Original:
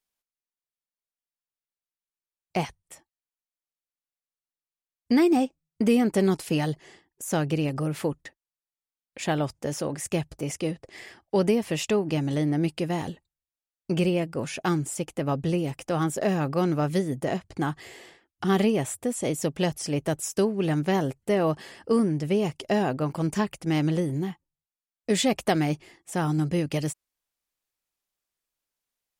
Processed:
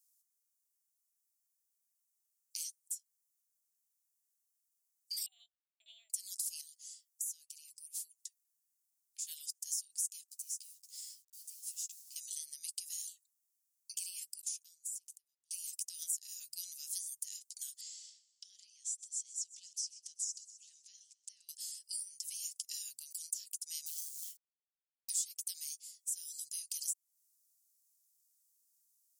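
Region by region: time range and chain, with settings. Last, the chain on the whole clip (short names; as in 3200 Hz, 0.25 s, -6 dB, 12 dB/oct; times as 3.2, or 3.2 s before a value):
5.26–6.1 frequency shift +430 Hz + LPC vocoder at 8 kHz pitch kept
6.61–9.27 bell 250 Hz -8.5 dB 1.8 oct + compressor 3:1, threshold -45 dBFS
10.28–12.16 compressor 4:1, threshold -39 dBFS + companded quantiser 6-bit + ensemble effect
14.41–15.51 flipped gate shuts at -28 dBFS, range -38 dB + sustainer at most 30 dB/s
17.81–21.49 LPF 6400 Hz 24 dB/oct + compressor 16:1, threshold -35 dBFS + feedback echo 0.128 s, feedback 51%, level -19.5 dB
23.86–25.1 BPF 190–5800 Hz + companded quantiser 6-bit
whole clip: inverse Chebyshev high-pass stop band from 1100 Hz, stop band 80 dB; compressor 3:1, threshold -52 dBFS; gain +13.5 dB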